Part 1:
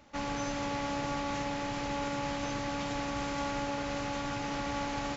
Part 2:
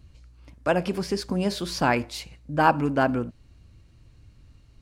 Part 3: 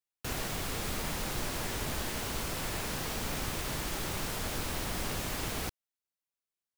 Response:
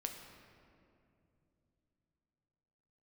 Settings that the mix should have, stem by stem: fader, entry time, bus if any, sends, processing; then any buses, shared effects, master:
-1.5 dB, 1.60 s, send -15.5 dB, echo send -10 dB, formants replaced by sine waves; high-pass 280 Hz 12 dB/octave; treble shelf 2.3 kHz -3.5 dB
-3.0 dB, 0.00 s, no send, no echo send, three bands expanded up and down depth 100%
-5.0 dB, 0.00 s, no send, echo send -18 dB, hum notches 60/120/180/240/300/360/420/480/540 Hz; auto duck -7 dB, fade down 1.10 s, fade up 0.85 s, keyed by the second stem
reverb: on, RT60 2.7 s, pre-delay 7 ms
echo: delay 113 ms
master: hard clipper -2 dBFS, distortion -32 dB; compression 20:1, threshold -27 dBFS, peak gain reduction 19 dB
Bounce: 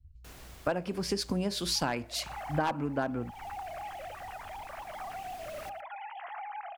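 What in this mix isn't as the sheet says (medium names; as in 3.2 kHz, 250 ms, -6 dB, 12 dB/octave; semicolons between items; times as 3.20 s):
stem 1 -1.5 dB -> -8.0 dB; stem 2 -3.0 dB -> +6.5 dB; stem 3 -5.0 dB -> -13.0 dB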